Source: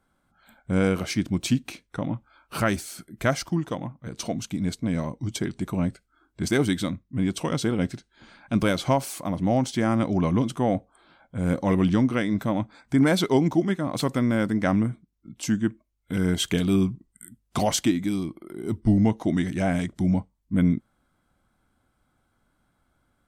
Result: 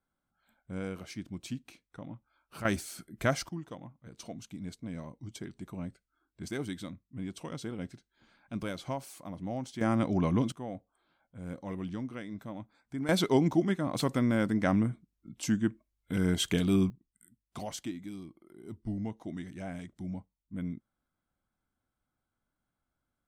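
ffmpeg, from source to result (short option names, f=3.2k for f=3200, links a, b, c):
-af "asetnsamples=n=441:p=0,asendcmd='2.65 volume volume -5dB;3.49 volume volume -14dB;9.81 volume volume -5dB;10.52 volume volume -16.5dB;13.09 volume volume -4.5dB;16.9 volume volume -16dB',volume=-15.5dB"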